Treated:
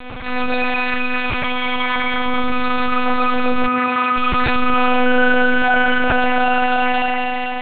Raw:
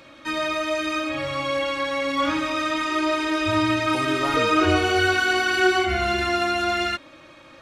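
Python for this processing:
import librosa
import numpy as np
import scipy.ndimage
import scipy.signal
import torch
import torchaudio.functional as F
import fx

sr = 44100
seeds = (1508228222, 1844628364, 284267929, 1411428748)

y = fx.peak_eq(x, sr, hz=630.0, db=-7.0, octaves=2.0, at=(0.73, 1.61))
y = fx.rev_spring(y, sr, rt60_s=2.8, pass_ms=(35, 50), chirp_ms=60, drr_db=-9.5)
y = fx.lpc_monotone(y, sr, seeds[0], pitch_hz=250.0, order=8)
y = fx.bandpass_edges(y, sr, low_hz=100.0, high_hz=2200.0, at=(3.66, 4.16), fade=0.02)
y = fx.env_flatten(y, sr, amount_pct=50)
y = F.gain(torch.from_numpy(y), -6.5).numpy()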